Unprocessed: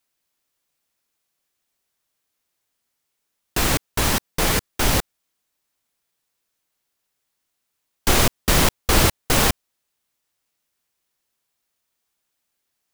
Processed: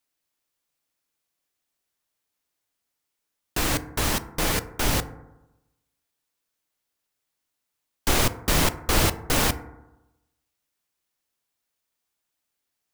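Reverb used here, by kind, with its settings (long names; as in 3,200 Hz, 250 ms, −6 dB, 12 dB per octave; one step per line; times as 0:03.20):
feedback delay network reverb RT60 0.97 s, low-frequency decay 1.05×, high-frequency decay 0.3×, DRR 11 dB
level −4.5 dB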